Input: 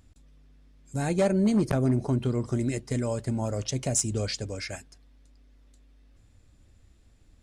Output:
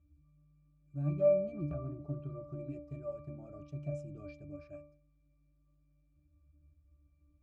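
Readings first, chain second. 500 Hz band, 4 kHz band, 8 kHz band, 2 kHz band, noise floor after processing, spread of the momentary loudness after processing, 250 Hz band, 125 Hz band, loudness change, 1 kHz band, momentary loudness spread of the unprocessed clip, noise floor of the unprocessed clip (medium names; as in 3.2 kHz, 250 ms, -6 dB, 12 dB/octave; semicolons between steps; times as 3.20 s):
-4.5 dB, under -35 dB, under -40 dB, -21.5 dB, -71 dBFS, 20 LU, -16.0 dB, -11.5 dB, -9.5 dB, -18.0 dB, 11 LU, -59 dBFS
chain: pitch-class resonator D, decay 0.47 s; trim +5 dB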